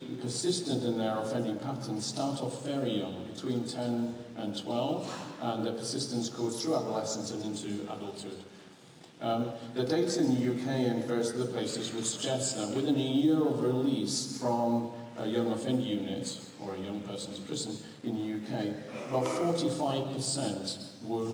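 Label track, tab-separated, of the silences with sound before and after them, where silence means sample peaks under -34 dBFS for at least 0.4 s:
8.410000	9.210000	silence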